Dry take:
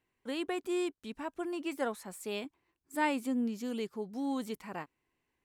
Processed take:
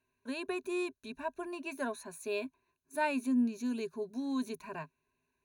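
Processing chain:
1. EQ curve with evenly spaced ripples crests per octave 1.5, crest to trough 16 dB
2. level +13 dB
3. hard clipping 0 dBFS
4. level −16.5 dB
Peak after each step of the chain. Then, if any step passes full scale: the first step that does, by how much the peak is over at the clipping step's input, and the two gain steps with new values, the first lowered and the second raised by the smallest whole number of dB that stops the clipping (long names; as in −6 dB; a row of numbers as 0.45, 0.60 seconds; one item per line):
−16.5, −3.5, −3.5, −20.0 dBFS
no step passes full scale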